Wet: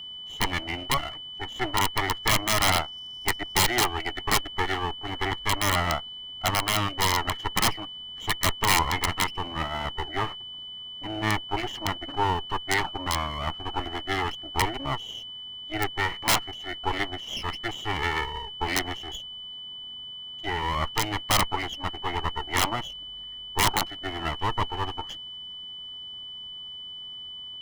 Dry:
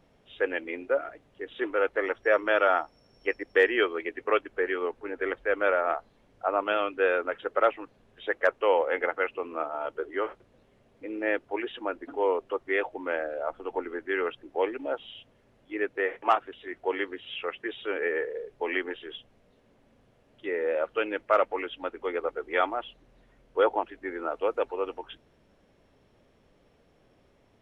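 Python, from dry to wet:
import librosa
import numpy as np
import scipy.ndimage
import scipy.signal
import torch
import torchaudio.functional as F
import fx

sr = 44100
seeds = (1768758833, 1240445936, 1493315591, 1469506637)

y = fx.lower_of_two(x, sr, delay_ms=0.98)
y = (np.mod(10.0 ** (19.0 / 20.0) * y + 1.0, 2.0) - 1.0) / 10.0 ** (19.0 / 20.0)
y = y + 10.0 ** (-42.0 / 20.0) * np.sin(2.0 * np.pi * 3000.0 * np.arange(len(y)) / sr)
y = y * librosa.db_to_amplitude(5.0)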